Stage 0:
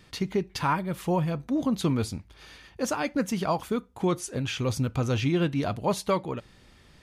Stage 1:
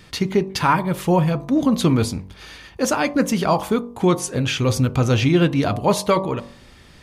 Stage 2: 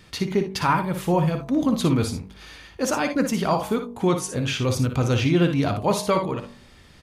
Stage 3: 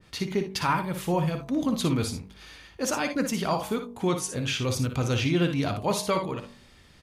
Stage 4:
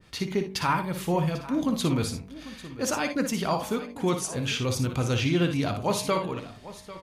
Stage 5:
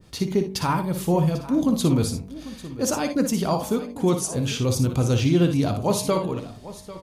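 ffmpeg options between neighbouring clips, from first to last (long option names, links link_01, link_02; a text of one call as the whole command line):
ffmpeg -i in.wav -af "bandreject=frequency=47.88:width_type=h:width=4,bandreject=frequency=95.76:width_type=h:width=4,bandreject=frequency=143.64:width_type=h:width=4,bandreject=frequency=191.52:width_type=h:width=4,bandreject=frequency=239.4:width_type=h:width=4,bandreject=frequency=287.28:width_type=h:width=4,bandreject=frequency=335.16:width_type=h:width=4,bandreject=frequency=383.04:width_type=h:width=4,bandreject=frequency=430.92:width_type=h:width=4,bandreject=frequency=478.8:width_type=h:width=4,bandreject=frequency=526.68:width_type=h:width=4,bandreject=frequency=574.56:width_type=h:width=4,bandreject=frequency=622.44:width_type=h:width=4,bandreject=frequency=670.32:width_type=h:width=4,bandreject=frequency=718.2:width_type=h:width=4,bandreject=frequency=766.08:width_type=h:width=4,bandreject=frequency=813.96:width_type=h:width=4,bandreject=frequency=861.84:width_type=h:width=4,bandreject=frequency=909.72:width_type=h:width=4,bandreject=frequency=957.6:width_type=h:width=4,bandreject=frequency=1005.48:width_type=h:width=4,bandreject=frequency=1053.36:width_type=h:width=4,bandreject=frequency=1101.24:width_type=h:width=4,bandreject=frequency=1149.12:width_type=h:width=4,bandreject=frequency=1197:width_type=h:width=4,volume=9dB" out.wav
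ffmpeg -i in.wav -af "aecho=1:1:58|79:0.376|0.126,volume=-4dB" out.wav
ffmpeg -i in.wav -af "adynamicequalizer=threshold=0.0126:dfrequency=1800:dqfactor=0.7:tfrequency=1800:tqfactor=0.7:attack=5:release=100:ratio=0.375:range=2:mode=boostabove:tftype=highshelf,volume=-5dB" out.wav
ffmpeg -i in.wav -af "aecho=1:1:795:0.15" out.wav
ffmpeg -i in.wav -af "equalizer=frequency=2000:width=0.64:gain=-10,volume=6dB" out.wav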